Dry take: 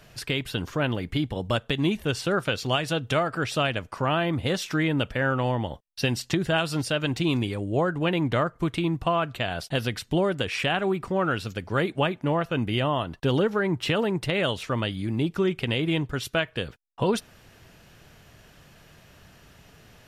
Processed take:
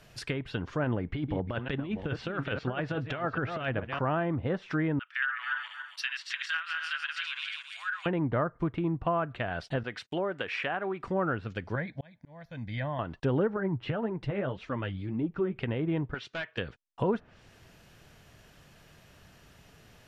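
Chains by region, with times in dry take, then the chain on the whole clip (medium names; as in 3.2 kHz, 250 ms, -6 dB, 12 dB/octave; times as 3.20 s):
0.84–3.99 s: chunks repeated in reverse 423 ms, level -10 dB + low-pass 6.9 kHz + compressor with a negative ratio -26 dBFS, ratio -0.5
4.99–8.06 s: backward echo that repeats 139 ms, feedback 57%, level -3 dB + steep high-pass 1.3 kHz
9.83–11.04 s: high-pass 480 Hz 6 dB/octave + gate -49 dBFS, range -32 dB
11.75–12.99 s: peaking EQ 840 Hz -7 dB 0.73 oct + static phaser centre 1.9 kHz, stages 8 + slow attack 592 ms
13.56–15.56 s: low-pass 3.7 kHz 6 dB/octave + bass shelf 210 Hz +4.5 dB + flange 1.8 Hz, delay 2.8 ms, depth 7.1 ms, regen +28%
16.14–16.58 s: high-pass 600 Hz 6 dB/octave + overload inside the chain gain 28.5 dB + distance through air 120 m
whole clip: low-pass that closes with the level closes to 1.2 kHz, closed at -23 dBFS; dynamic bell 1.7 kHz, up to +5 dB, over -44 dBFS, Q 1.8; trim -4 dB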